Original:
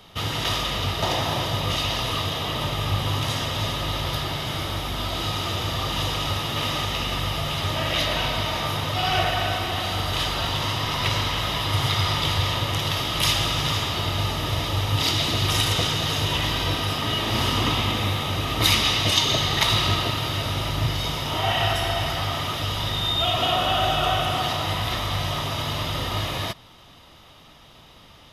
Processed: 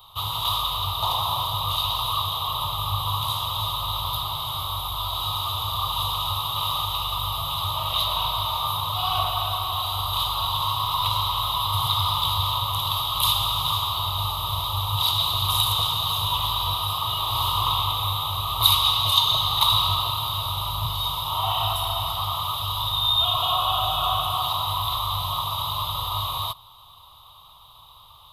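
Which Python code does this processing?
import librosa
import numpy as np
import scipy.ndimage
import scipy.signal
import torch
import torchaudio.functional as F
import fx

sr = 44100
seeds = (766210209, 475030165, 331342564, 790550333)

y = fx.curve_eq(x, sr, hz=(100.0, 160.0, 220.0, 350.0, 690.0, 1100.0, 1700.0, 3800.0, 5400.0, 14000.0), db=(0, -8, -29, -16, -4, 14, -22, 9, -12, 15))
y = y * librosa.db_to_amplitude(-3.5)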